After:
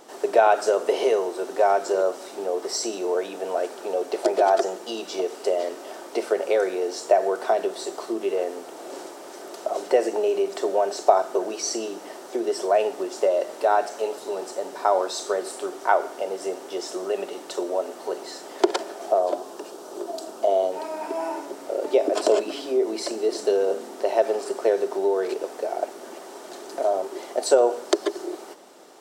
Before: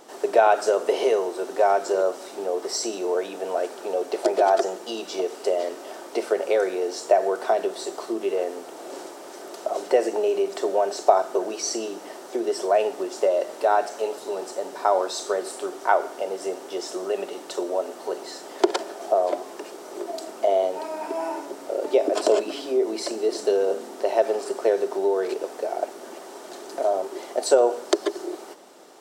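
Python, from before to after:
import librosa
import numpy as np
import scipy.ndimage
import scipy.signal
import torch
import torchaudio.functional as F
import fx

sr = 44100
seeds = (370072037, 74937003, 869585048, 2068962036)

y = fx.peak_eq(x, sr, hz=2100.0, db=-9.0, octaves=0.52, at=(19.19, 20.72))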